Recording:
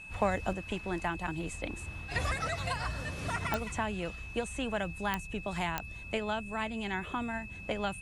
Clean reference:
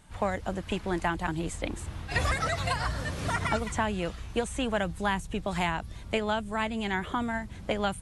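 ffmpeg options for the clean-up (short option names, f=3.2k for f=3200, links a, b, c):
-af "adeclick=t=4,bandreject=f=2.6k:w=30,asetnsamples=n=441:p=0,asendcmd='0.53 volume volume 5dB',volume=0dB"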